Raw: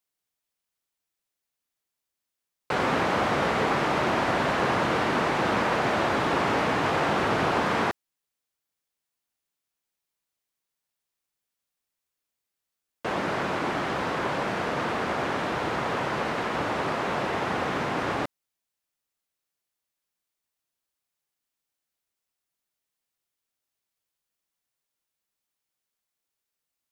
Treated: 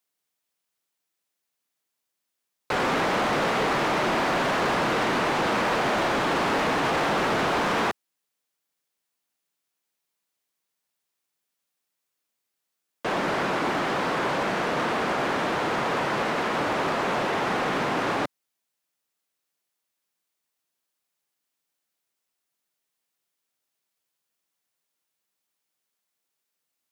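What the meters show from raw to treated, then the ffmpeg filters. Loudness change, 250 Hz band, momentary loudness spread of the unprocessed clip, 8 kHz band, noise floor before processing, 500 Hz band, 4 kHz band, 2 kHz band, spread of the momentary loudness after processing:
+1.5 dB, +1.0 dB, 4 LU, +4.0 dB, under -85 dBFS, +1.0 dB, +3.0 dB, +1.5 dB, 3 LU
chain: -af "highpass=140,asoftclip=type=hard:threshold=-24.5dB,volume=3.5dB"

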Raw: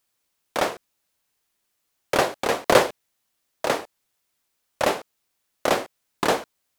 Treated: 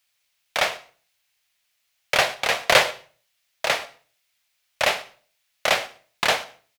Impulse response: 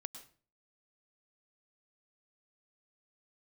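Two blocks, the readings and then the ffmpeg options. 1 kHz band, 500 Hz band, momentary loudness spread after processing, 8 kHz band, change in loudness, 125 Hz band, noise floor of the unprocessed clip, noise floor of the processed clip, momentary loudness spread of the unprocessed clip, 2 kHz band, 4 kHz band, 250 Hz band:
-0.5 dB, -3.5 dB, 14 LU, +2.5 dB, +2.0 dB, -4.0 dB, -75 dBFS, -72 dBFS, 12 LU, +6.0 dB, +7.0 dB, -11.5 dB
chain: -filter_complex "[0:a]firequalizer=gain_entry='entry(130,0);entry(300,-12);entry(630,3);entry(1000,1);entry(2200,12);entry(8200,4)':delay=0.05:min_phase=1,asplit=2[a][b];[1:a]atrim=start_sample=2205[c];[b][c]afir=irnorm=-1:irlink=0,volume=-5.5dB[d];[a][d]amix=inputs=2:normalize=0,volume=-5.5dB"

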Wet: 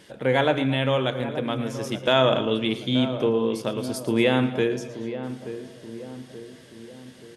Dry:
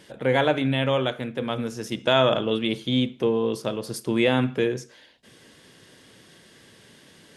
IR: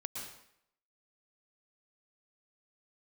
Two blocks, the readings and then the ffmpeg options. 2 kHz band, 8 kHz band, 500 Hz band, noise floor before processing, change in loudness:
0.0 dB, 0.0 dB, +0.5 dB, -53 dBFS, 0.0 dB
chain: -filter_complex "[0:a]asplit=2[a][b];[b]adelay=879,lowpass=f=930:p=1,volume=-10.5dB,asplit=2[c][d];[d]adelay=879,lowpass=f=930:p=1,volume=0.53,asplit=2[e][f];[f]adelay=879,lowpass=f=930:p=1,volume=0.53,asplit=2[g][h];[h]adelay=879,lowpass=f=930:p=1,volume=0.53,asplit=2[i][j];[j]adelay=879,lowpass=f=930:p=1,volume=0.53,asplit=2[k][l];[l]adelay=879,lowpass=f=930:p=1,volume=0.53[m];[a][c][e][g][i][k][m]amix=inputs=7:normalize=0,asplit=2[n][o];[1:a]atrim=start_sample=2205,atrim=end_sample=6174,adelay=114[p];[o][p]afir=irnorm=-1:irlink=0,volume=-11.5dB[q];[n][q]amix=inputs=2:normalize=0"

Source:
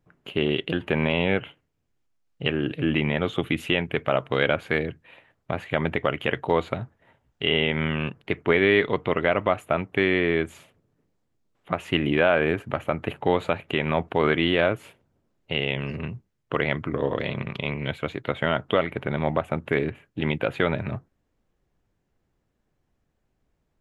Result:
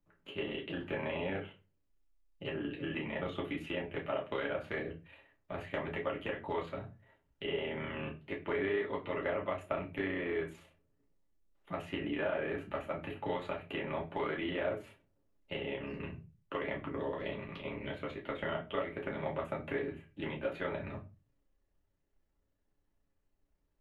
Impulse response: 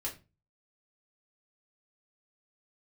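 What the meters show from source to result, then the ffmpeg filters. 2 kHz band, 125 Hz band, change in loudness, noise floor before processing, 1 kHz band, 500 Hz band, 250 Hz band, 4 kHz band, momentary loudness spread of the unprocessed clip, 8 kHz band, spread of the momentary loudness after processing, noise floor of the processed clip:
-14.0 dB, -15.5 dB, -13.0 dB, -74 dBFS, -12.5 dB, -12.0 dB, -13.5 dB, -16.5 dB, 10 LU, n/a, 9 LU, -78 dBFS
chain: -filter_complex "[0:a]equalizer=f=120:t=o:w=0.52:g=-7.5,acrossover=split=600|1400|3800[a][b][c][d];[a]acompressor=threshold=-28dB:ratio=4[e];[b]acompressor=threshold=-29dB:ratio=4[f];[c]acompressor=threshold=-35dB:ratio=4[g];[d]acompressor=threshold=-56dB:ratio=4[h];[e][f][g][h]amix=inputs=4:normalize=0,tremolo=f=31:d=0.71[i];[1:a]atrim=start_sample=2205[j];[i][j]afir=irnorm=-1:irlink=0,volume=-6.5dB"

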